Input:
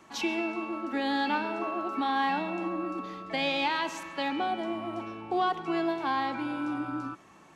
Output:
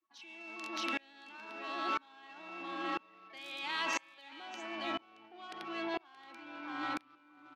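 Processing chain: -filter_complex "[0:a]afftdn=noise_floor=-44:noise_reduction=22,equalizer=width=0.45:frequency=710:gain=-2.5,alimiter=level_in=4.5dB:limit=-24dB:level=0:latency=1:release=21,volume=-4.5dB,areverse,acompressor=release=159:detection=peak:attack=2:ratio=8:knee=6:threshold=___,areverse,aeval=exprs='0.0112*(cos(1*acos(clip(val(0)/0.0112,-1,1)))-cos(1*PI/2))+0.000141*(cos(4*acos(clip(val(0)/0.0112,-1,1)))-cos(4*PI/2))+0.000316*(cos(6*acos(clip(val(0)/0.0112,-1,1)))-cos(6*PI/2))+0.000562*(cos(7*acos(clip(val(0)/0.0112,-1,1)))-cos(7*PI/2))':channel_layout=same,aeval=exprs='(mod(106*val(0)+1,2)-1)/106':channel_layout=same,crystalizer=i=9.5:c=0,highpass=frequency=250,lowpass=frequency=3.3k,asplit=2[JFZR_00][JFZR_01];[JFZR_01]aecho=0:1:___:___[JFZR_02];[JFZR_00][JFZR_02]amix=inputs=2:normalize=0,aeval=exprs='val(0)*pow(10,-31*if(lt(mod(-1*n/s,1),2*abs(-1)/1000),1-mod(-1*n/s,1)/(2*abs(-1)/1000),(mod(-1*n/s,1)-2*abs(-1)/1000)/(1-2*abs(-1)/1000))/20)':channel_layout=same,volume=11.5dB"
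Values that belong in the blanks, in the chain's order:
-45dB, 624, 0.473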